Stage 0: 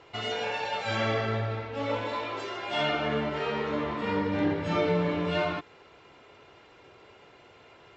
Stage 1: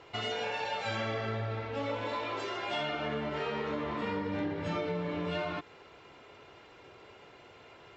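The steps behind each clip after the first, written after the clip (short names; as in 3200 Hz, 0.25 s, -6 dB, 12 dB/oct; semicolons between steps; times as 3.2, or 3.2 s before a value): compressor, threshold -31 dBFS, peak gain reduction 9 dB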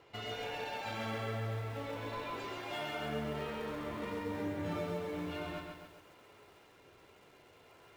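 flange 0.48 Hz, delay 8.7 ms, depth 4.9 ms, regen +81%; in parallel at -11.5 dB: decimation with a swept rate 25×, swing 160% 0.6 Hz; on the sum: lo-fi delay 0.135 s, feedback 55%, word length 10-bit, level -4 dB; gain -3.5 dB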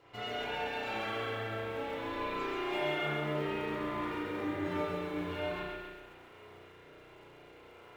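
spring tank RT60 1.2 s, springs 33 ms, chirp 45 ms, DRR -8 dB; gain -3 dB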